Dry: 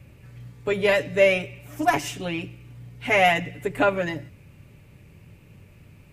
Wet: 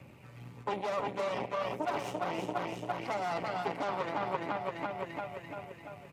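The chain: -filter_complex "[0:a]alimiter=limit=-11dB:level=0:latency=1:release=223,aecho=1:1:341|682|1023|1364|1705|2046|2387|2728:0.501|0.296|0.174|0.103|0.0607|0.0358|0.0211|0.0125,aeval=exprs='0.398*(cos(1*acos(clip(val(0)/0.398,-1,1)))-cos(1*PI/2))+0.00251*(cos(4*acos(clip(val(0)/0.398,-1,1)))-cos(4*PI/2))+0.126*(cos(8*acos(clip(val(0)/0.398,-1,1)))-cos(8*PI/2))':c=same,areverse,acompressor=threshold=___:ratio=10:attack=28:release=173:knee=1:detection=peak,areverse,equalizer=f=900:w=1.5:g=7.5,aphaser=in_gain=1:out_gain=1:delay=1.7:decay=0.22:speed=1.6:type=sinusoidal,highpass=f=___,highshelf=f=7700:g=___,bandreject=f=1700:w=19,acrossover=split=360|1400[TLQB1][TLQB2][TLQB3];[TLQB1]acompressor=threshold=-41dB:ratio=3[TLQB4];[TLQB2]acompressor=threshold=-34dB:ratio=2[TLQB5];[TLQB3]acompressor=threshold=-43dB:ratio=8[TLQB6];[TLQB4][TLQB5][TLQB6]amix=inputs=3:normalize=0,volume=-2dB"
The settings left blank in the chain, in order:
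-26dB, 160, -6.5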